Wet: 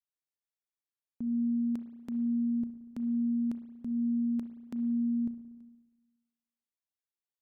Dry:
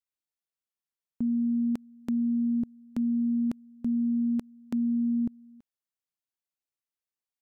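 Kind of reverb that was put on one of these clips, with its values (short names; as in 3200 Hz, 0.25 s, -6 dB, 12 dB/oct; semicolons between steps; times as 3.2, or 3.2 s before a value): spring tank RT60 1.2 s, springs 34/59 ms, chirp 25 ms, DRR 9 dB; gain -7.5 dB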